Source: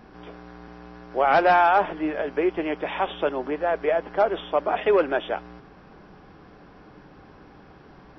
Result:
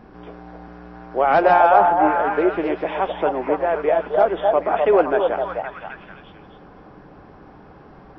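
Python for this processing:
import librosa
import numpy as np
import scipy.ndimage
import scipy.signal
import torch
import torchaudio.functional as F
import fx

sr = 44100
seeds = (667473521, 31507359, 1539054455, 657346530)

y = fx.high_shelf(x, sr, hz=2100.0, db=-9.5)
y = fx.echo_stepped(y, sr, ms=259, hz=670.0, octaves=0.7, feedback_pct=70, wet_db=-1.0)
y = F.gain(torch.from_numpy(y), 4.0).numpy()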